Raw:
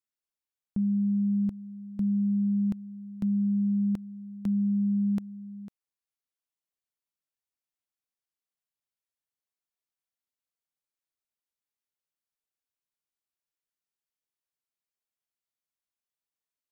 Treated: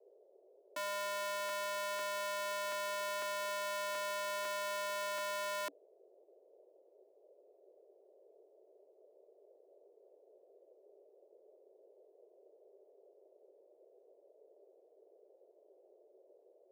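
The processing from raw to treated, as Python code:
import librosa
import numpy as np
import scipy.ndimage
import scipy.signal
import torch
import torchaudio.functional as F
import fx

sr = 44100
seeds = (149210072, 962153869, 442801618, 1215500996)

y = fx.rider(x, sr, range_db=4, speed_s=2.0)
y = fx.schmitt(y, sr, flips_db=-49.5)
y = fx.dmg_noise_band(y, sr, seeds[0], low_hz=370.0, high_hz=630.0, level_db=-65.0)
y = scipy.signal.sosfilt(scipy.signal.cheby1(6, 3, 280.0, 'highpass', fs=sr, output='sos'), y)
y = y * librosa.db_to_amplitude(2.5)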